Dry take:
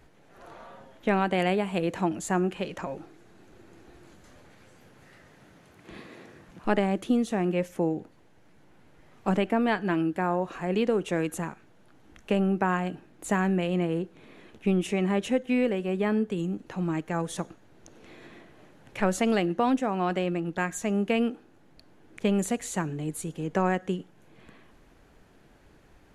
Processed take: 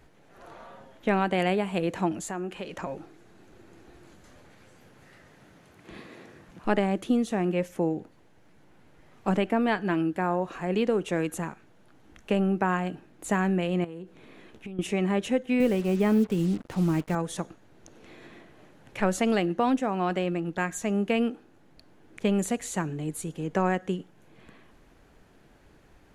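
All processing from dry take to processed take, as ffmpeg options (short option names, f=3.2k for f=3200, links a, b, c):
-filter_complex "[0:a]asettb=1/sr,asplit=3[a][b][c];[a]atrim=end=2.224[d];[b]atrim=start=2.22:end=2.73,asetpts=PTS-STARTPTS,afade=t=in:d=0.004:c=qsin,afade=t=out:st=0.506:d=0.004:c=qsin,equalizer=f=110:t=o:w=1.3:g=-8.5,acompressor=threshold=-33dB:ratio=2:attack=3.2:release=140:knee=1:detection=peak[e];[c]atrim=start=2.726[f];[d][e]acrossfade=d=0.004:c1=hsin:c2=qsin[g];[g][f]acrossfade=d=0.004:c1=qsin:c2=hsin,asettb=1/sr,asplit=3[h][i][j];[h]atrim=end=13.844[k];[i]atrim=start=13.84:end=14.79,asetpts=PTS-STARTPTS,afade=t=in:d=0.004:c=qsin,afade=t=out:st=0.946:d=0.004:c=qsin,asplit=2[l][m];[m]adelay=16,volume=-13dB[n];[l][n]amix=inputs=2:normalize=0,atrim=end_sample=41895,acompressor=threshold=-35dB:ratio=16:attack=3.2:release=140:knee=1:detection=peak[o];[j]atrim=start=14.786[p];[k][o]acrossfade=d=0.004:c1=hsin:c2=qsin[q];[q][p]acrossfade=d=0.004:c1=qsin:c2=hsin,asettb=1/sr,asplit=3[r][s][t];[r]atrim=end=15.604[u];[s]atrim=start=15.6:end=17.15,asetpts=PTS-STARTPTS,afade=t=in:d=0.004:c=qsin,afade=t=out:st=1.546:d=0.004:c=qsin,lowshelf=f=210:g=9,acrusher=bits=6:mix=0:aa=0.5,bandreject=f=1.7k:w=22[v];[t]atrim=start=17.146[w];[u][v]acrossfade=d=0.004:c1=hsin:c2=qsin[x];[x][w]acrossfade=d=0.004:c1=qsin:c2=hsin"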